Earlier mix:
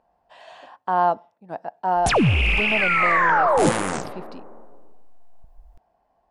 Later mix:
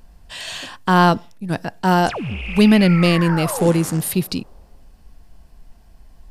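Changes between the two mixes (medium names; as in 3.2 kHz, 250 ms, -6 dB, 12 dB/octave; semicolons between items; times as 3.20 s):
speech: remove band-pass filter 750 Hz, Q 2.8; background -9.5 dB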